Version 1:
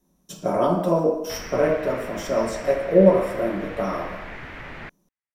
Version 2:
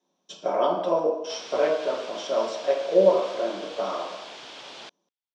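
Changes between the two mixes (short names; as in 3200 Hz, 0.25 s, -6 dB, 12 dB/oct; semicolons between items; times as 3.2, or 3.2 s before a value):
background: remove synth low-pass 2000 Hz, resonance Q 2.8; master: add speaker cabinet 470–5500 Hz, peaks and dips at 1300 Hz -3 dB, 1900 Hz -5 dB, 3300 Hz +6 dB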